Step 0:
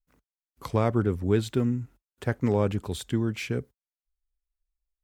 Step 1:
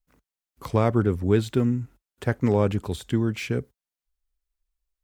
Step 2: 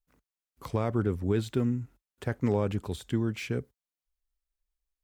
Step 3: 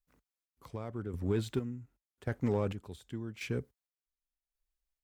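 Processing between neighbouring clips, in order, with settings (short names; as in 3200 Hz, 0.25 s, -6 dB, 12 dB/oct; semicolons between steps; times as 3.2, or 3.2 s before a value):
de-esser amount 90%; gain +3 dB
limiter -11 dBFS, peak gain reduction 4 dB; gain -5 dB
chopper 0.88 Hz, depth 65%, duty 40%; in parallel at -6.5 dB: hard clip -27.5 dBFS, distortion -7 dB; on the sum: gain -6 dB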